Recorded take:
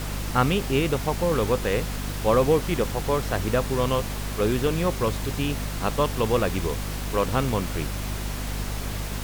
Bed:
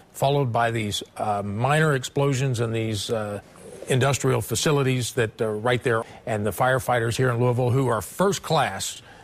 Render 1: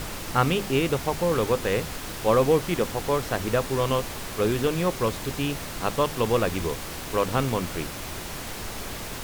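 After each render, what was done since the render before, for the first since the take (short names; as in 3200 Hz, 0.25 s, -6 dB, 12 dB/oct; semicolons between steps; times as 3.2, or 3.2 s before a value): notches 50/100/150/200/250 Hz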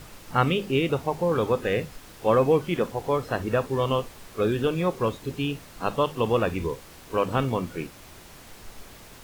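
noise print and reduce 12 dB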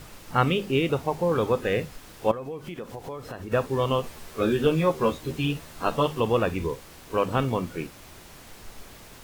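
2.31–3.52 compressor 5:1, threshold -33 dBFS; 4.02–6.2 doubler 13 ms -2.5 dB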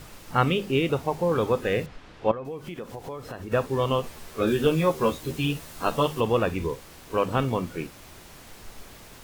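1.86–2.45 LPF 3500 Hz; 4.47–6.21 high shelf 5700 Hz +5.5 dB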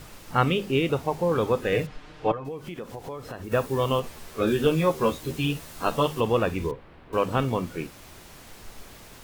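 1.72–2.49 comb 6.6 ms; 3.44–4 high shelf 9500 Hz +9 dB; 6.71–7.13 air absorption 470 m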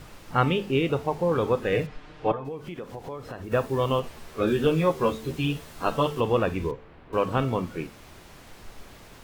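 high shelf 5500 Hz -7.5 dB; de-hum 220.6 Hz, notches 35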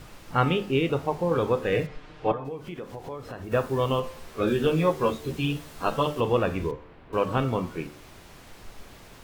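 de-hum 74.18 Hz, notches 29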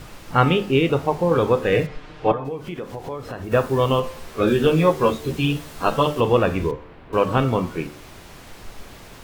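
gain +6 dB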